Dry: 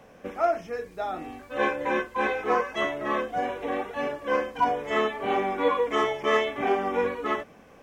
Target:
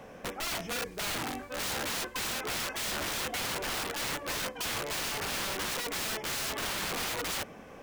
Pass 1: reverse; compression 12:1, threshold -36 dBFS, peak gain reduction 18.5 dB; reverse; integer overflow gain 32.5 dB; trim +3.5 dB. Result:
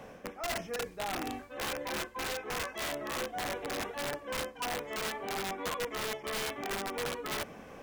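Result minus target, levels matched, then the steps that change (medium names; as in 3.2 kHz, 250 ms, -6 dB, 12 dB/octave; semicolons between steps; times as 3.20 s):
compression: peak gain reduction +7 dB
change: compression 12:1, threshold -28.5 dBFS, peak gain reduction 11.5 dB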